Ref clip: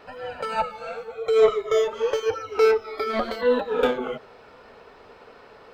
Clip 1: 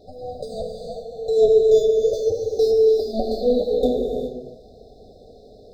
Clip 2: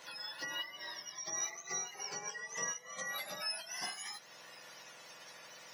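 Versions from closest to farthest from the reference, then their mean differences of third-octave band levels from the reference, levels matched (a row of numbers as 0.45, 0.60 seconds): 1, 2; 9.0, 13.0 decibels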